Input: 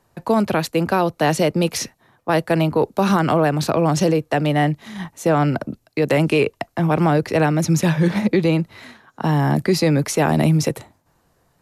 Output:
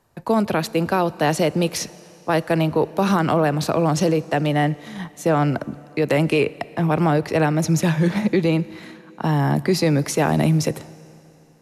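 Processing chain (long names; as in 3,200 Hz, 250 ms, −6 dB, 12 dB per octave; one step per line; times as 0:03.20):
four-comb reverb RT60 3 s, combs from 28 ms, DRR 19 dB
level −1.5 dB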